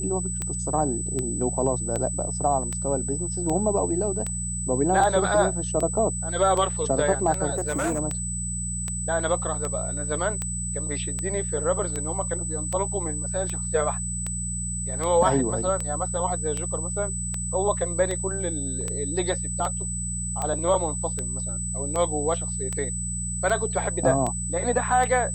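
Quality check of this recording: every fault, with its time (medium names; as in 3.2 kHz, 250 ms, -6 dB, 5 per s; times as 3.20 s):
hum 60 Hz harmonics 3 -32 dBFS
tick 78 rpm -15 dBFS
whine 8 kHz -30 dBFS
7.54–8.00 s: clipped -21.5 dBFS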